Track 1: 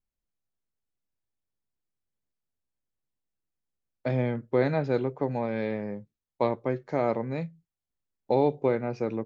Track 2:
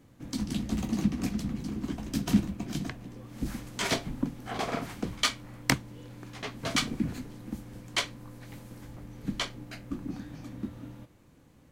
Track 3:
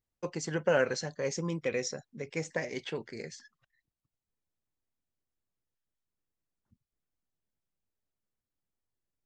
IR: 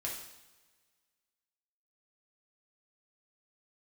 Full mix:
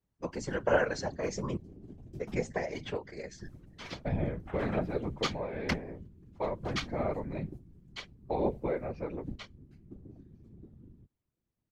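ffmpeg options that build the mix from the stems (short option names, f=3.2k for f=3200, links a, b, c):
-filter_complex "[0:a]lowpass=3.9k,volume=-2dB,asplit=2[a][b];[1:a]afwtdn=0.0126,lowshelf=f=130:t=q:w=1.5:g=7.5,volume=-2dB[c];[2:a]equalizer=f=790:t=o:w=2.6:g=8.5,volume=-0.5dB,asplit=3[d][e][f];[d]atrim=end=1.57,asetpts=PTS-STARTPTS,afade=t=out:st=1.566:d=0.004:c=hsin[g];[e]atrim=start=1.57:end=2.2,asetpts=PTS-STARTPTS,volume=0[h];[f]atrim=start=2.2,asetpts=PTS-STARTPTS,afade=t=in:d=0.004:c=hsin[i];[g][h][i]concat=n=3:v=0:a=1[j];[b]apad=whole_len=516790[k];[c][k]sidechaingate=range=-7dB:threshold=-48dB:ratio=16:detection=peak[l];[a][l][j]amix=inputs=3:normalize=0,aecho=1:1:6.6:0.54,afftfilt=real='hypot(re,im)*cos(2*PI*random(0))':imag='hypot(re,im)*sin(2*PI*random(1))':win_size=512:overlap=0.75"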